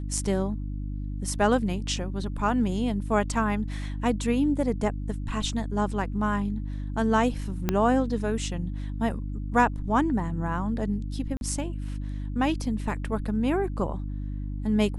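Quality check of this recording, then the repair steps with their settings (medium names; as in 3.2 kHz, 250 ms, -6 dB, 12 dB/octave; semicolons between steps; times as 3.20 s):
hum 50 Hz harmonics 6 -32 dBFS
7.69 s: pop -10 dBFS
11.37–11.41 s: dropout 41 ms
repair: de-click; de-hum 50 Hz, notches 6; interpolate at 11.37 s, 41 ms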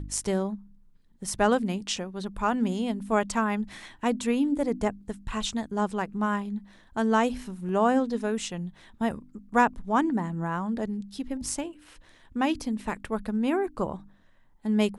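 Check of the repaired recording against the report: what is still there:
7.69 s: pop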